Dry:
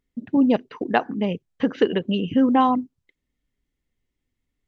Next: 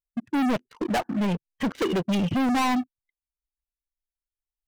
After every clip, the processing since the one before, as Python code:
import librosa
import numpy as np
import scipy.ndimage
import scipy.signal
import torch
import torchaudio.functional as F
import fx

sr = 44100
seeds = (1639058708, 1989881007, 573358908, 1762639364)

y = fx.bin_expand(x, sr, power=1.5)
y = fx.leveller(y, sr, passes=3)
y = 10.0 ** (-21.5 / 20.0) * np.tanh(y / 10.0 ** (-21.5 / 20.0))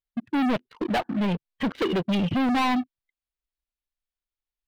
y = fx.high_shelf_res(x, sr, hz=5000.0, db=-6.5, q=1.5)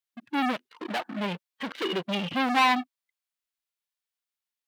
y = fx.highpass(x, sr, hz=1100.0, slope=6)
y = fx.hpss(y, sr, part='harmonic', gain_db=9)
y = y * 10.0 ** (-2.0 / 20.0)